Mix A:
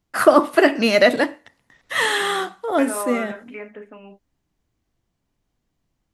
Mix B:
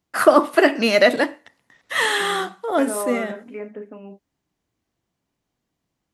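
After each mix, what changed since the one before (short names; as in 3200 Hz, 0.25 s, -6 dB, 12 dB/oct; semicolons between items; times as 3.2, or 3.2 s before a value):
second voice: add tilt shelf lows +8 dB, about 800 Hz; master: add HPF 160 Hz 6 dB/oct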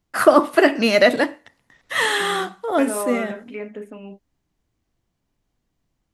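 second voice: remove LPF 1800 Hz 12 dB/oct; master: remove HPF 160 Hz 6 dB/oct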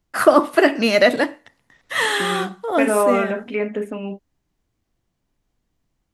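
second voice +9.0 dB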